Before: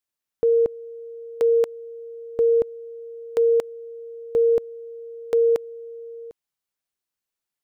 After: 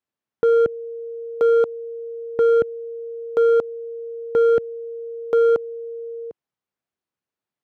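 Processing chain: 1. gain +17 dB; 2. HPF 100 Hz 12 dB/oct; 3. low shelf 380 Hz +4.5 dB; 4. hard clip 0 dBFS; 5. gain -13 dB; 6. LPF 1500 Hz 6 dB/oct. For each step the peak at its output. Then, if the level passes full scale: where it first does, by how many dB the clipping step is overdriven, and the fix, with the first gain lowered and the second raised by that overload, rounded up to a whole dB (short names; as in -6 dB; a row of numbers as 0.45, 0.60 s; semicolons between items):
+3.0, +4.0, +6.0, 0.0, -13.0, -13.0 dBFS; step 1, 6.0 dB; step 1 +11 dB, step 5 -7 dB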